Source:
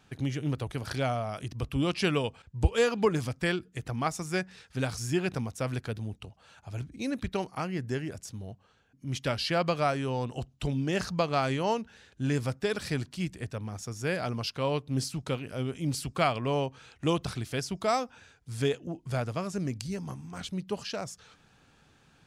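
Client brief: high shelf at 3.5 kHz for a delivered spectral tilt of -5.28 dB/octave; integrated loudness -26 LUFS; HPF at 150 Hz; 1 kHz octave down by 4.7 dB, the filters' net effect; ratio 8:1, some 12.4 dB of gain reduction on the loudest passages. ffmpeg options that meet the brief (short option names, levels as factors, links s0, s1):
-af "highpass=150,equalizer=f=1000:t=o:g=-6.5,highshelf=f=3500:g=-4,acompressor=threshold=0.02:ratio=8,volume=5.31"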